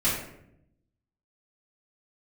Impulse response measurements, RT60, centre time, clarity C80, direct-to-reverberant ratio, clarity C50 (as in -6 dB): 0.75 s, 48 ms, 6.0 dB, -10.5 dB, 3.0 dB